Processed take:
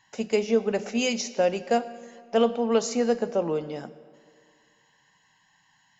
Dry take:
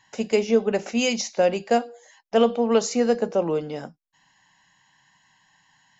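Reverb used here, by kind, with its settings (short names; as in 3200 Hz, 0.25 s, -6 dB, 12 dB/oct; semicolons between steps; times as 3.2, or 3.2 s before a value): digital reverb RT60 2.1 s, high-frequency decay 0.75×, pre-delay 50 ms, DRR 16 dB; gain -3 dB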